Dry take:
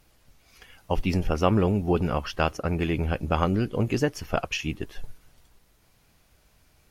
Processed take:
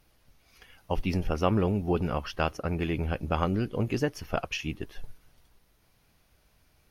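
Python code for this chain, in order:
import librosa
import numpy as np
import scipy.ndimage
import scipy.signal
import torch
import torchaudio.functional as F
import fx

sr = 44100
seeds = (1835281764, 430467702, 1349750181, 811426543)

y = fx.peak_eq(x, sr, hz=7500.0, db=-8.0, octaves=0.26)
y = F.gain(torch.from_numpy(y), -3.5).numpy()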